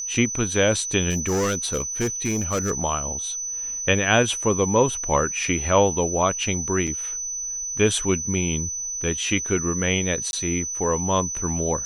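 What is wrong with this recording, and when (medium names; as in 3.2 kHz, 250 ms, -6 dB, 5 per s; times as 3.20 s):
whine 6 kHz -27 dBFS
1.09–2.72 s: clipped -19 dBFS
6.87–6.88 s: dropout 5.7 ms
10.31–10.33 s: dropout 21 ms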